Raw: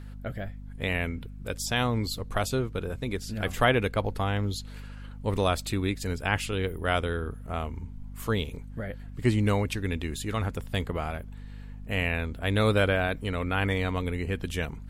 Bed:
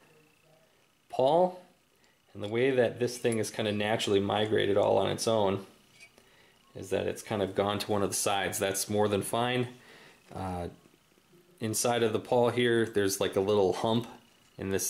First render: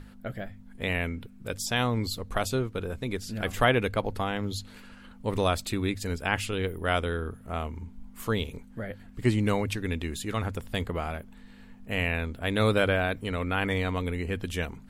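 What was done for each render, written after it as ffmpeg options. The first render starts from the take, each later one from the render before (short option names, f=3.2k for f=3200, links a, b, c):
-af "bandreject=f=50:t=h:w=6,bandreject=f=100:t=h:w=6,bandreject=f=150:t=h:w=6"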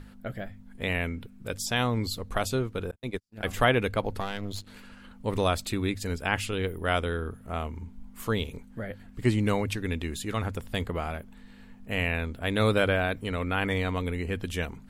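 -filter_complex "[0:a]asettb=1/sr,asplit=3[a][b][c];[a]atrim=end=2.914[d];[b]atrim=start=2.91:end=3.48,asetpts=PTS-STARTPTS,afade=t=in:d=0.004:c=qsin,afade=t=out:st=0.566:d=0.004:c=qsin,agate=range=-50dB:threshold=-32dB:ratio=16:release=100:detection=peak[e];[c]atrim=start=3.476[f];[d][e]acrossfade=d=0.004:c1=hsin:c2=qsin[g];[g][f]acrossfade=d=0.004:c1=qsin:c2=hsin,asettb=1/sr,asplit=3[h][i][j];[h]atrim=end=4.204[k];[i]atrim=start=4.2:end=4.67,asetpts=PTS-STARTPTS,afade=t=in:d=0.004:c=qsin,afade=t=out:st=0.466:d=0.004:c=qsin,aeval=exprs='if(lt(val(0),0),0.251*val(0),val(0))':c=same[l];[j]atrim=start=4.666[m];[k][l]acrossfade=d=0.004:c1=hsin:c2=qsin[n];[n][m]acrossfade=d=0.004:c1=qsin:c2=hsin"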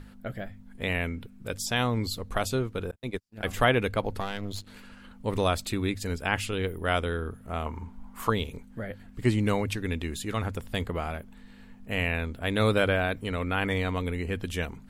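-filter_complex "[0:a]asettb=1/sr,asplit=3[a][b][c];[a]atrim=end=7.664[d];[b]atrim=start=7.66:end=8.3,asetpts=PTS-STARTPTS,afade=t=in:d=0.004:c=qsin,afade=t=out:st=0.636:d=0.004:c=qsin,equalizer=f=1k:t=o:w=1.5:g=12[e];[c]atrim=start=8.296[f];[d][e]acrossfade=d=0.004:c1=hsin:c2=qsin[g];[g][f]acrossfade=d=0.004:c1=qsin:c2=hsin"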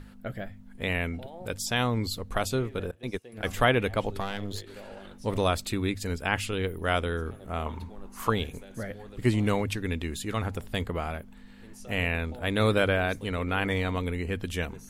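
-filter_complex "[1:a]volume=-20.5dB[a];[0:a][a]amix=inputs=2:normalize=0"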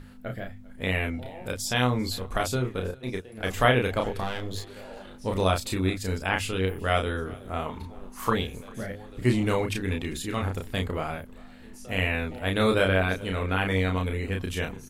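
-filter_complex "[0:a]asplit=2[a][b];[b]adelay=32,volume=-3.5dB[c];[a][c]amix=inputs=2:normalize=0,aecho=1:1:396:0.0668"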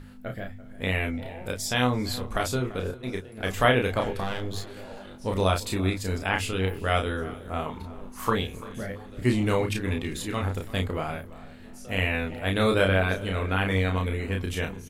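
-filter_complex "[0:a]asplit=2[a][b];[b]adelay=20,volume=-13.5dB[c];[a][c]amix=inputs=2:normalize=0,asplit=2[d][e];[e]adelay=339,lowpass=f=2k:p=1,volume=-17dB,asplit=2[f][g];[g]adelay=339,lowpass=f=2k:p=1,volume=0.36,asplit=2[h][i];[i]adelay=339,lowpass=f=2k:p=1,volume=0.36[j];[d][f][h][j]amix=inputs=4:normalize=0"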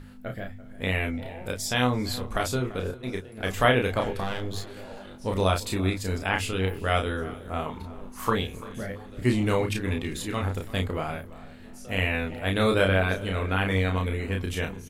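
-af anull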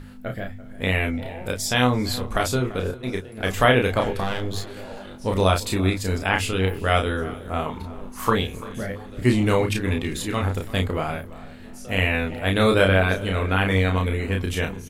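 -af "volume=4.5dB,alimiter=limit=-3dB:level=0:latency=1"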